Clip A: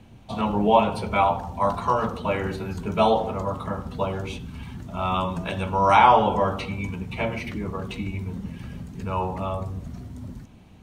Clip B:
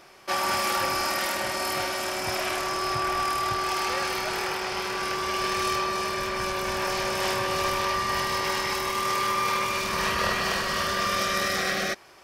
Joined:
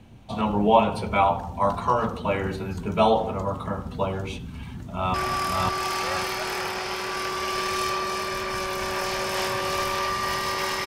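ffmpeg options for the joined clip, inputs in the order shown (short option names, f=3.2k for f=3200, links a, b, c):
-filter_complex "[0:a]apad=whole_dur=10.86,atrim=end=10.86,atrim=end=5.142[a];[1:a]atrim=start=2.998:end=8.72[b];[a][b]acrossfade=d=0.004:c1=hsin:c2=hsin,asplit=2[c][d];[d]afade=t=in:st=4.48:d=0.01,afade=t=out:st=5.14:d=0.01,aecho=0:1:550|1100|1650|2200|2750:0.841395|0.336558|0.134623|0.0538493|0.0215397[e];[c][e]amix=inputs=2:normalize=0"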